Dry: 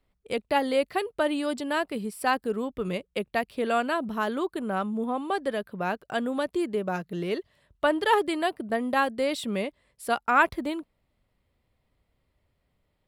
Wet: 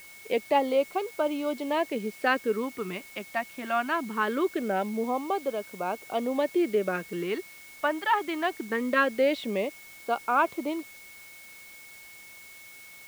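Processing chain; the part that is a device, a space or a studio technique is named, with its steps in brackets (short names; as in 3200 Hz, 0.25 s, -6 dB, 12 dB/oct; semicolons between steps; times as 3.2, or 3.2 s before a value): shortwave radio (BPF 290–2700 Hz; tremolo 0.44 Hz, depth 48%; LFO notch sine 0.22 Hz 450–1900 Hz; whine 2200 Hz -53 dBFS; white noise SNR 22 dB); gain +5 dB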